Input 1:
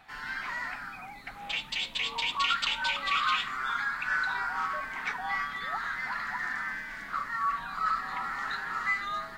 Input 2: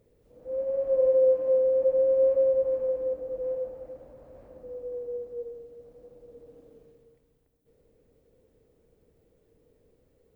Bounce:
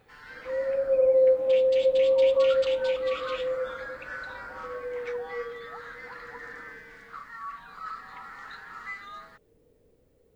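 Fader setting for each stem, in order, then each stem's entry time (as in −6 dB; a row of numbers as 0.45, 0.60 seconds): −9.0, +1.0 decibels; 0.00, 0.00 seconds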